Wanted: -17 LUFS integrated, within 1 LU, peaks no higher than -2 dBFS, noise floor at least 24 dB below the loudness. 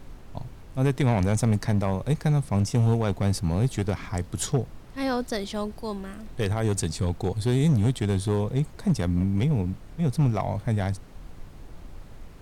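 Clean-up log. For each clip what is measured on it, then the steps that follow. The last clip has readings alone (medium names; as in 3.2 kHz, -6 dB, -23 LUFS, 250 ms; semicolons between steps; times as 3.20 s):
clipped samples 1.1%; clipping level -16.0 dBFS; noise floor -44 dBFS; noise floor target -50 dBFS; loudness -26.0 LUFS; peak level -16.0 dBFS; loudness target -17.0 LUFS
-> clip repair -16 dBFS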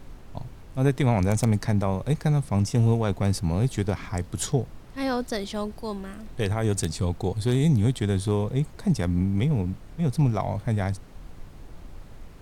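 clipped samples 0.0%; noise floor -44 dBFS; noise floor target -50 dBFS
-> noise print and reduce 6 dB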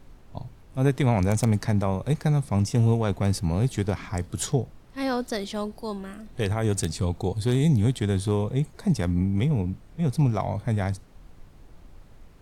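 noise floor -50 dBFS; loudness -25.5 LUFS; peak level -7.0 dBFS; loudness target -17.0 LUFS
-> trim +8.5 dB; peak limiter -2 dBFS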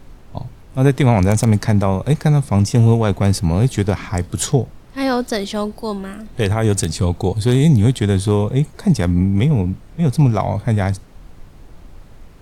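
loudness -17.0 LUFS; peak level -2.0 dBFS; noise floor -42 dBFS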